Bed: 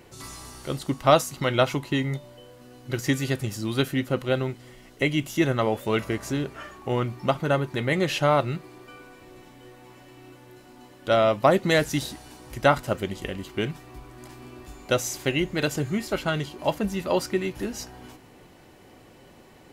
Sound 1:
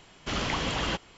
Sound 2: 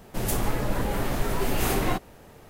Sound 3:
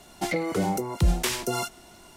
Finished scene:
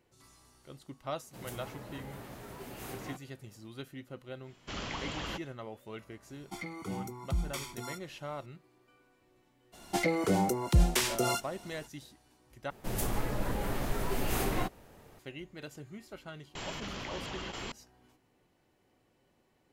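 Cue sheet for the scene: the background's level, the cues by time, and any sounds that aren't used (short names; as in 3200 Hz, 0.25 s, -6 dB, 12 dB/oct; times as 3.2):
bed -20 dB
1.19 add 2 -17.5 dB + HPF 69 Hz
4.41 add 1 -9 dB, fades 0.10 s
6.3 add 3 -15.5 dB + comb 0.9 ms, depth 86%
9.72 add 3 -2 dB, fades 0.02 s
12.7 replace with 2 -6.5 dB
16.55 add 1 -13.5 dB + fast leveller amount 100%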